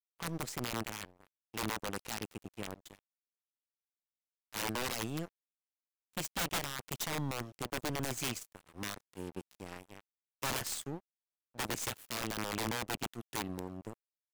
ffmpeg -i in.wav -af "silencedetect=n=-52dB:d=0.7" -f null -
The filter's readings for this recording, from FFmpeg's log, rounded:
silence_start: 2.99
silence_end: 4.53 | silence_duration: 1.54
silence_start: 5.28
silence_end: 6.13 | silence_duration: 0.86